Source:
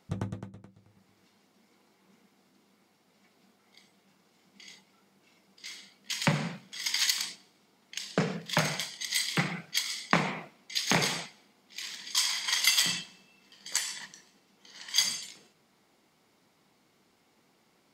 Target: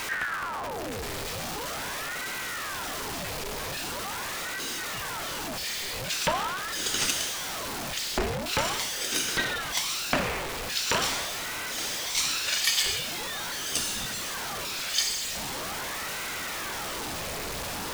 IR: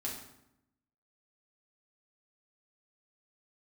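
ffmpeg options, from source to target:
-af "aeval=exprs='val(0)+0.5*0.0562*sgn(val(0))':channel_layout=same,aeval=exprs='val(0)*sin(2*PI*980*n/s+980*0.8/0.43*sin(2*PI*0.43*n/s))':channel_layout=same"

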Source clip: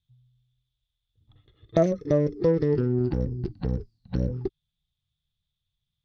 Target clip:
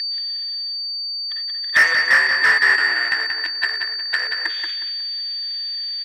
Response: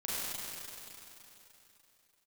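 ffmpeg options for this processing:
-filter_complex "[0:a]agate=range=-33dB:threshold=-50dB:ratio=3:detection=peak,areverse,acompressor=mode=upward:threshold=-29dB:ratio=2.5,areverse,aeval=exprs='0.422*(cos(1*acos(clip(val(0)/0.422,-1,1)))-cos(1*PI/2))+0.0376*(cos(5*acos(clip(val(0)/0.422,-1,1)))-cos(5*PI/2))':channel_layout=same,afreqshift=-53,aresample=16000,asoftclip=type=hard:threshold=-18.5dB,aresample=44100,aeval=exprs='val(0)+0.0158*sin(2*PI*4600*n/s)':channel_layout=same,highpass=frequency=1800:width_type=q:width=16,asplit=2[link_01][link_02];[link_02]highpass=frequency=720:poles=1,volume=25dB,asoftclip=type=tanh:threshold=-3dB[link_03];[link_01][link_03]amix=inputs=2:normalize=0,lowpass=frequency=2500:poles=1,volume=-6dB,asplit=2[link_04][link_05];[link_05]adelay=181,lowpass=frequency=4500:poles=1,volume=-5dB,asplit=2[link_06][link_07];[link_07]adelay=181,lowpass=frequency=4500:poles=1,volume=0.33,asplit=2[link_08][link_09];[link_09]adelay=181,lowpass=frequency=4500:poles=1,volume=0.33,asplit=2[link_10][link_11];[link_11]adelay=181,lowpass=frequency=4500:poles=1,volume=0.33[link_12];[link_04][link_06][link_08][link_10][link_12]amix=inputs=5:normalize=0"

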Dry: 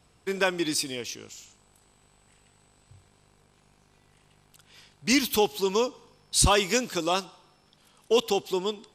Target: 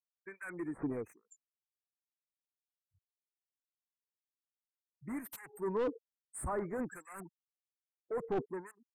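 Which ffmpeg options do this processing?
ffmpeg -i in.wav -filter_complex "[0:a]afftfilt=real='re*gte(hypot(re,im),0.0251)':imag='im*gte(hypot(re,im),0.0251)':win_size=1024:overlap=0.75,aemphasis=mode=production:type=75fm,areverse,acompressor=threshold=-30dB:ratio=8,areverse,asoftclip=type=tanh:threshold=-35.5dB,asuperstop=centerf=4200:order=12:qfactor=0.66,acrossover=split=1600[link_01][link_02];[link_01]aeval=exprs='val(0)*(1-1/2+1/2*cos(2*PI*1.2*n/s))':channel_layout=same[link_03];[link_02]aeval=exprs='val(0)*(1-1/2-1/2*cos(2*PI*1.2*n/s))':channel_layout=same[link_04];[link_03][link_04]amix=inputs=2:normalize=0,aeval=exprs='0.0158*(abs(mod(val(0)/0.0158+3,4)-2)-1)':channel_layout=same,adynamicsmooth=sensitivity=5.5:basefreq=7600,volume=8dB" out.wav

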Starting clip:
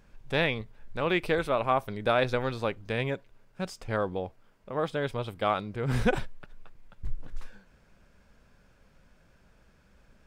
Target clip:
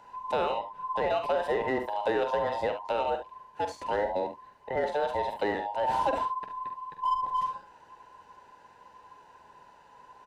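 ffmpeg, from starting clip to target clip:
ffmpeg -i in.wav -filter_complex "[0:a]afftfilt=real='real(if(between(b,1,1008),(2*floor((b-1)/48)+1)*48-b,b),0)':imag='imag(if(between(b,1,1008),(2*floor((b-1)/48)+1)*48-b,b),0)*if(between(b,1,1008),-1,1)':win_size=2048:overlap=0.75,highpass=42,asplit=2[link_01][link_02];[link_02]volume=27.5dB,asoftclip=hard,volume=-27.5dB,volume=-5.5dB[link_03];[link_01][link_03]amix=inputs=2:normalize=0,lowshelf=frequency=470:gain=3.5,asplit=2[link_04][link_05];[link_05]aecho=0:1:46|70:0.355|0.266[link_06];[link_04][link_06]amix=inputs=2:normalize=0,acrossover=split=400|1100|2400[link_07][link_08][link_09][link_10];[link_07]acompressor=threshold=-41dB:ratio=4[link_11];[link_08]acompressor=threshold=-26dB:ratio=4[link_12];[link_09]acompressor=threshold=-45dB:ratio=4[link_13];[link_10]acompressor=threshold=-46dB:ratio=4[link_14];[link_11][link_12][link_13][link_14]amix=inputs=4:normalize=0,highshelf=frequency=9100:gain=-8.5" out.wav

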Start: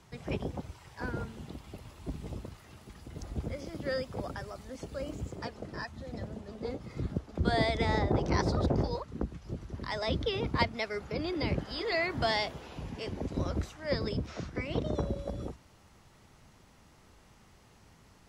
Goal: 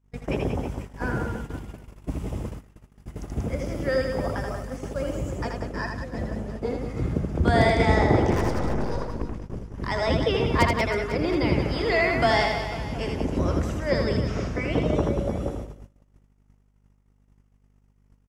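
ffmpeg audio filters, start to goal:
ffmpeg -i in.wav -filter_complex "[0:a]asettb=1/sr,asplit=3[link_01][link_02][link_03];[link_01]atrim=end=8.314[link_04];[link_02]atrim=start=8.31:end=9.76,asetpts=PTS-STARTPTS,afade=type=in:duration=0.004:curve=qsin,afade=type=out:start_time=1.446:duration=0.004:curve=qsin,aeval=exprs='(tanh(44.7*val(0)+0.7)-tanh(0.7))/44.7':channel_layout=same[link_05];[link_03]atrim=start=9.756[link_06];[link_04][link_05]acrossfade=duration=0.004:curve1=hsin:curve2=qsin[link_07];[link_07][link_06]acrossfade=duration=0.004:curve1=qsin:curve2=hsin,bandreject=frequency=50:width_type=h:width=6,bandreject=frequency=100:width_type=h:width=6,bandreject=frequency=150:width_type=h:width=6,bandreject=frequency=200:width_type=h:width=6,aeval=exprs='0.141*(abs(mod(val(0)/0.141+3,4)-2)-1)':channel_layout=same,equalizer=frequency=4100:width_type=o:width=0.54:gain=-10,aecho=1:1:80|184|319.2|495|723.4:0.631|0.398|0.251|0.158|0.1,aeval=exprs='val(0)+0.00794*(sin(2*PI*50*n/s)+sin(2*PI*2*50*n/s)/2+sin(2*PI*3*50*n/s)/3+sin(2*PI*4*50*n/s)/4+sin(2*PI*5*50*n/s)/5)':channel_layout=same,agate=range=-33dB:threshold=-39dB:ratio=16:detection=peak,volume=7.5dB" out.wav

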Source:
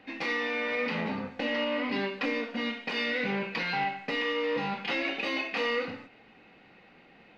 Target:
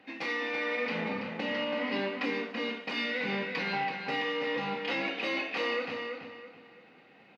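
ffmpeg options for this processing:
ffmpeg -i in.wav -filter_complex "[0:a]highpass=120,bandreject=frequency=60:width_type=h:width=6,bandreject=frequency=120:width_type=h:width=6,bandreject=frequency=180:width_type=h:width=6,bandreject=frequency=240:width_type=h:width=6,asplit=2[link_01][link_02];[link_02]adelay=331,lowpass=frequency=4800:poles=1,volume=-5.5dB,asplit=2[link_03][link_04];[link_04]adelay=331,lowpass=frequency=4800:poles=1,volume=0.32,asplit=2[link_05][link_06];[link_06]adelay=331,lowpass=frequency=4800:poles=1,volume=0.32,asplit=2[link_07][link_08];[link_08]adelay=331,lowpass=frequency=4800:poles=1,volume=0.32[link_09];[link_03][link_05][link_07][link_09]amix=inputs=4:normalize=0[link_10];[link_01][link_10]amix=inputs=2:normalize=0,volume=-2.5dB" out.wav

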